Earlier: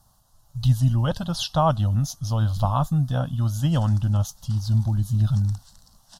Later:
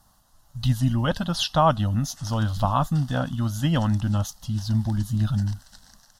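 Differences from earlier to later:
background: entry −1.55 s
master: add graphic EQ with 10 bands 125 Hz −5 dB, 250 Hz +6 dB, 2,000 Hz +10 dB

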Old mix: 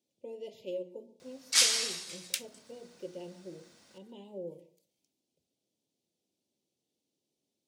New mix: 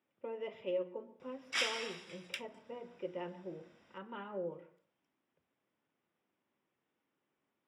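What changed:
speech: remove Butterworth band-reject 1,400 Hz, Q 0.56
first sound: send −6.0 dB
master: add Savitzky-Golay smoothing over 25 samples

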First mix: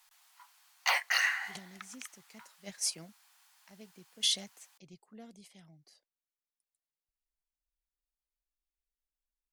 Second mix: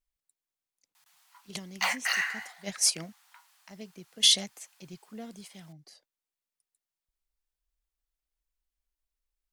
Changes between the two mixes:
speech +8.5 dB
background: entry +0.95 s

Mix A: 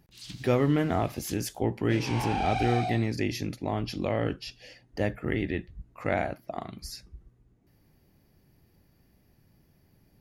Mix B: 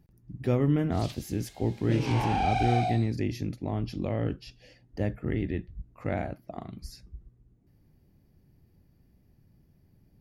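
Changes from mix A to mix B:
speech −8.0 dB
first sound: entry +0.80 s
master: add low-shelf EQ 400 Hz +11 dB

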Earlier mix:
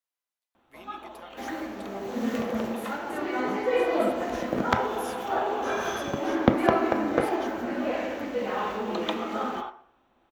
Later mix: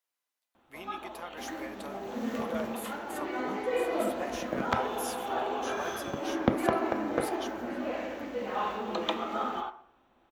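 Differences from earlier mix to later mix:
speech +5.0 dB
second sound −5.5 dB

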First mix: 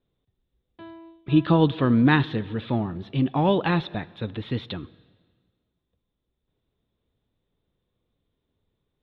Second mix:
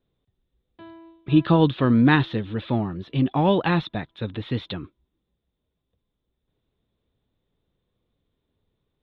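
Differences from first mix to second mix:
speech +3.5 dB
reverb: off

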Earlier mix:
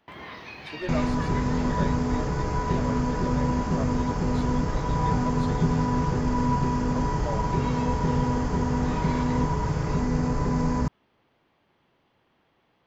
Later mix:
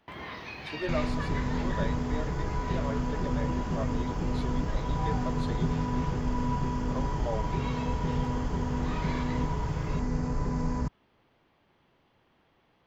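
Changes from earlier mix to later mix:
second sound −7.0 dB
master: add low-shelf EQ 65 Hz +7.5 dB

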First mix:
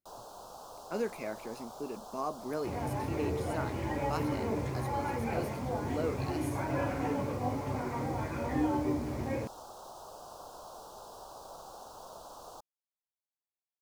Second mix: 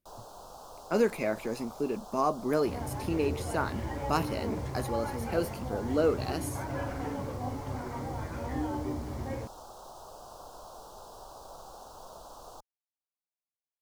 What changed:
speech +8.0 dB
second sound: send −6.0 dB
master: add low-shelf EQ 62 Hz +11 dB

